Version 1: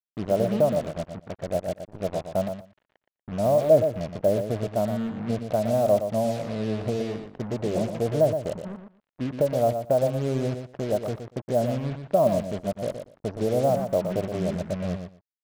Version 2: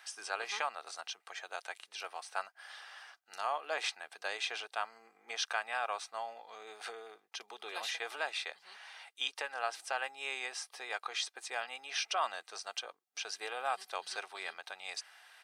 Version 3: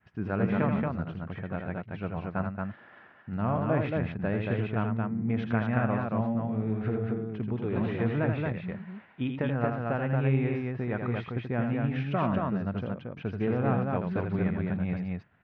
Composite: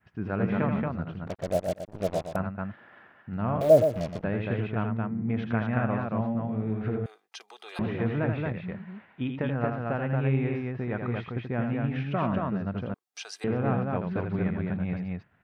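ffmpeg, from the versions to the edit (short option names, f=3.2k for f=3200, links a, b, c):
-filter_complex "[0:a]asplit=2[a][b];[1:a]asplit=2[c][d];[2:a]asplit=5[e][f][g][h][i];[e]atrim=end=1.272[j];[a]atrim=start=1.268:end=2.362[k];[f]atrim=start=2.358:end=3.612[l];[b]atrim=start=3.608:end=4.242[m];[g]atrim=start=4.238:end=7.062[n];[c]atrim=start=7.058:end=7.792[o];[h]atrim=start=7.788:end=12.942[p];[d]atrim=start=12.938:end=13.442[q];[i]atrim=start=13.438[r];[j][k]acrossfade=d=0.004:c1=hsin:c2=hsin[s];[s][l]acrossfade=d=0.004:c1=hsin:c2=hsin[t];[t][m]acrossfade=d=0.004:c1=hsin:c2=hsin[u];[u][n]acrossfade=d=0.004:c1=hsin:c2=hsin[v];[v][o]acrossfade=d=0.004:c1=hsin:c2=hsin[w];[w][p]acrossfade=d=0.004:c1=hsin:c2=hsin[x];[x][q]acrossfade=d=0.004:c1=hsin:c2=hsin[y];[y][r]acrossfade=d=0.004:c1=hsin:c2=hsin"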